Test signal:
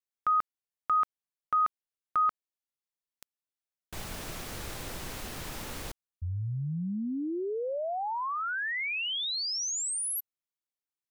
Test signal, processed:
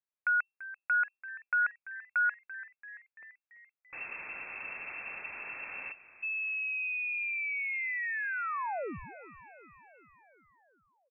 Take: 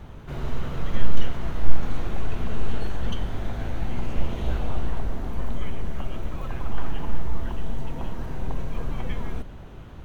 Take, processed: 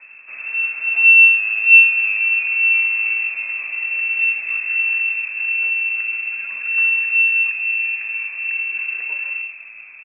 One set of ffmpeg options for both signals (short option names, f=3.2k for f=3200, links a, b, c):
-filter_complex "[0:a]asplit=7[a][b][c][d][e][f][g];[b]adelay=338,afreqshift=-110,volume=-16dB[h];[c]adelay=676,afreqshift=-220,volume=-20.6dB[i];[d]adelay=1014,afreqshift=-330,volume=-25.2dB[j];[e]adelay=1352,afreqshift=-440,volume=-29.7dB[k];[f]adelay=1690,afreqshift=-550,volume=-34.3dB[l];[g]adelay=2028,afreqshift=-660,volume=-38.9dB[m];[a][h][i][j][k][l][m]amix=inputs=7:normalize=0,lowpass=f=2.3k:t=q:w=0.5098,lowpass=f=2.3k:t=q:w=0.6013,lowpass=f=2.3k:t=q:w=0.9,lowpass=f=2.3k:t=q:w=2.563,afreqshift=-2700,volume=-2dB"